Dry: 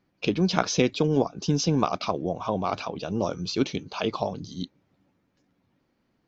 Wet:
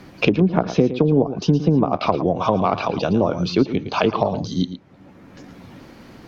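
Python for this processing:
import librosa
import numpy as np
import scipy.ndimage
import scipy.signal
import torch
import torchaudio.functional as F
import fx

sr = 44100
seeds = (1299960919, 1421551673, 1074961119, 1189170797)

y = fx.env_lowpass_down(x, sr, base_hz=640.0, full_db=-19.0)
y = y + 10.0 ** (-13.0 / 20.0) * np.pad(y, (int(112 * sr / 1000.0), 0))[:len(y)]
y = fx.band_squash(y, sr, depth_pct=70)
y = F.gain(torch.from_numpy(y), 7.5).numpy()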